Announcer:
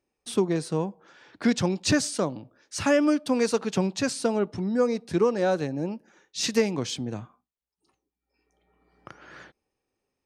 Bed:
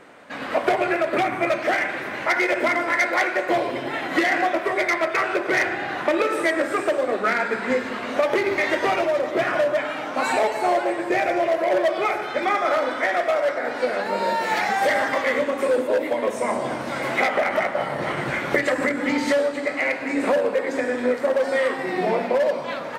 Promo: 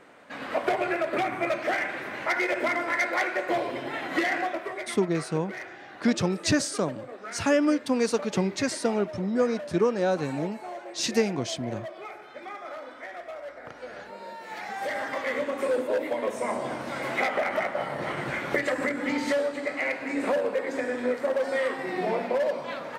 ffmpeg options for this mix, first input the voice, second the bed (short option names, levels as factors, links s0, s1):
-filter_complex "[0:a]adelay=4600,volume=0.891[s0];[1:a]volume=2.24,afade=t=out:st=4.23:d=0.74:silence=0.237137,afade=t=in:st=14.43:d=1.19:silence=0.237137[s1];[s0][s1]amix=inputs=2:normalize=0"